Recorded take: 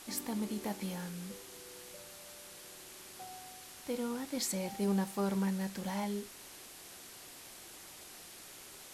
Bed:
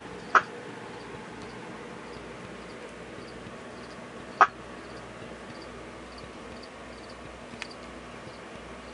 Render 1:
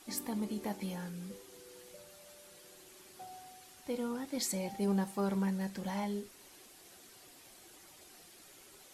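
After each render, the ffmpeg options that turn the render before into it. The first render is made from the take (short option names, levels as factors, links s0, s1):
-af "afftdn=nr=8:nf=-52"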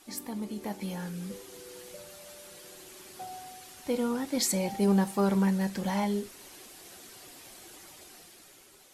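-af "dynaudnorm=f=280:g=7:m=2.37"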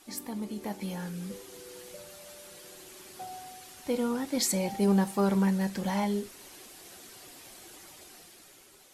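-af anull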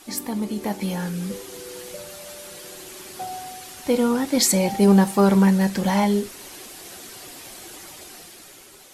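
-af "volume=2.99"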